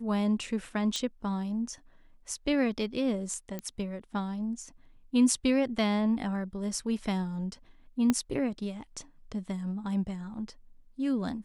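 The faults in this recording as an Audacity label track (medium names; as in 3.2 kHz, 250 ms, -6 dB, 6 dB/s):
0.960000	0.960000	pop -18 dBFS
3.590000	3.590000	pop -21 dBFS
8.100000	8.100000	pop -12 dBFS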